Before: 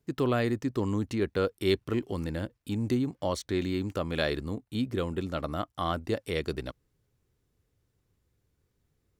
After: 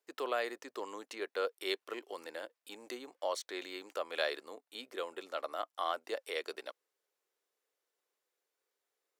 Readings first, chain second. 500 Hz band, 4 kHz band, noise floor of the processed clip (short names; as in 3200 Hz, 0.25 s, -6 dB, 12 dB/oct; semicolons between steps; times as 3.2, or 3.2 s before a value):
-7.5 dB, -3.5 dB, under -85 dBFS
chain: HPF 480 Hz 24 dB/oct; gain -3.5 dB